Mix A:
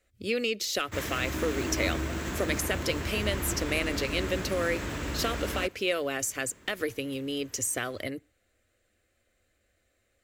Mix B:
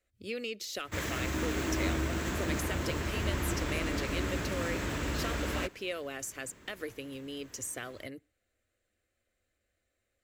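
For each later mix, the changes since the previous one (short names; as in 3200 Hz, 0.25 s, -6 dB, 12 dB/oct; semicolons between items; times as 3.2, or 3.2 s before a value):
speech -8.5 dB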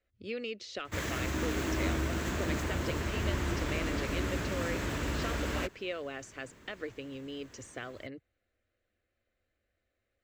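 speech: add Gaussian blur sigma 1.6 samples; reverb: off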